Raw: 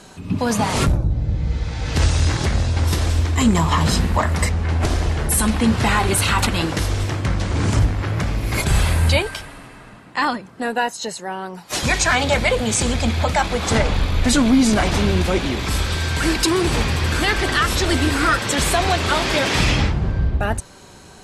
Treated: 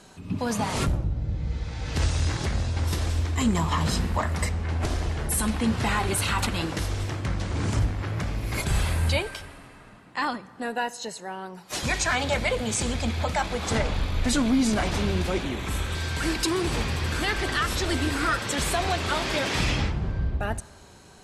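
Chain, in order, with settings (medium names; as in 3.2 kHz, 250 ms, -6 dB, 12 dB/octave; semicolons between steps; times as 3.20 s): 15.43–15.95 s: peaking EQ 4.9 kHz -11.5 dB 0.35 oct; on a send: reverberation RT60 1.4 s, pre-delay 10 ms, DRR 19.5 dB; on the sum: trim -7.5 dB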